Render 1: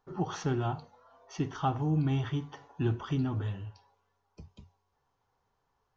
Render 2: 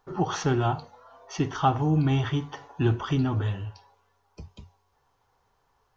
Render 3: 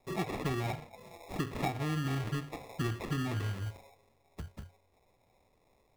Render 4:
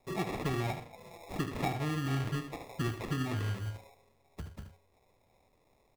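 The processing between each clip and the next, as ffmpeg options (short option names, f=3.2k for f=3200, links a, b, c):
-af "equalizer=f=190:t=o:w=1.8:g=-4,volume=8.5dB"
-filter_complex "[0:a]acrusher=samples=29:mix=1:aa=0.000001,acrossover=split=1400|3400[a][b][c];[a]acompressor=threshold=-33dB:ratio=4[d];[b]acompressor=threshold=-43dB:ratio=4[e];[c]acompressor=threshold=-52dB:ratio=4[f];[d][e][f]amix=inputs=3:normalize=0"
-af "aecho=1:1:75:0.335"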